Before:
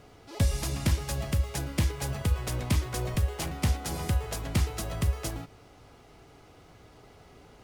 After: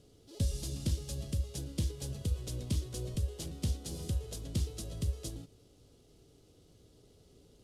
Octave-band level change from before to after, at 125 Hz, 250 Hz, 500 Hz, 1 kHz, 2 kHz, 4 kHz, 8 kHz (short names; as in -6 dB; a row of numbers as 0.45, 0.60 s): -6.5, -6.5, -8.5, -20.0, -18.5, -7.0, -6.5 dB